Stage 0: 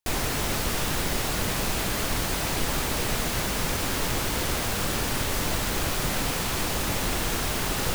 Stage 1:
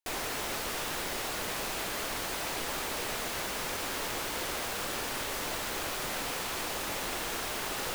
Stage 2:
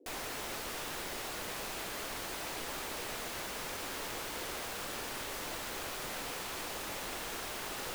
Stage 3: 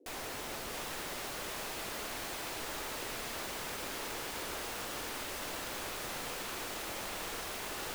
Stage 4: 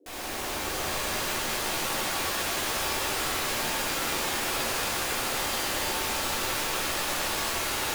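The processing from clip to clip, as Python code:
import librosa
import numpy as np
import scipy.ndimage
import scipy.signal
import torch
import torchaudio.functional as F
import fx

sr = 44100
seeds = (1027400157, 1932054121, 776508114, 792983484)

y1 = fx.bass_treble(x, sr, bass_db=-13, treble_db=-2)
y1 = F.gain(torch.from_numpy(y1), -5.0).numpy()
y2 = fx.dmg_noise_band(y1, sr, seeds[0], low_hz=260.0, high_hz=520.0, level_db=-55.0)
y2 = F.gain(torch.from_numpy(y2), -5.5).numpy()
y3 = fx.echo_split(y2, sr, split_hz=900.0, low_ms=111, high_ms=670, feedback_pct=52, wet_db=-5)
y3 = F.gain(torch.from_numpy(y3), -1.5).numpy()
y4 = fx.rev_shimmer(y3, sr, seeds[1], rt60_s=3.1, semitones=7, shimmer_db=-2, drr_db=-7.5)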